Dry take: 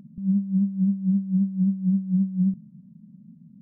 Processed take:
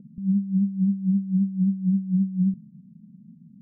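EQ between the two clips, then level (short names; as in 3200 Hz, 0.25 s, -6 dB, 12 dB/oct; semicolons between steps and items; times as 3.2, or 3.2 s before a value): elliptic low-pass 510 Hz, stop band 40 dB; 0.0 dB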